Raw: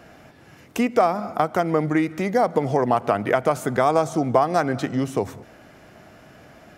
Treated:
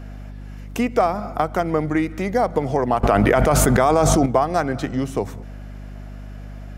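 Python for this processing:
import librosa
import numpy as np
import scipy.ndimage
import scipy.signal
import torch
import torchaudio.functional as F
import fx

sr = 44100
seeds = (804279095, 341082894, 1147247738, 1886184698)

y = fx.add_hum(x, sr, base_hz=50, snr_db=12)
y = fx.env_flatten(y, sr, amount_pct=100, at=(3.03, 4.26))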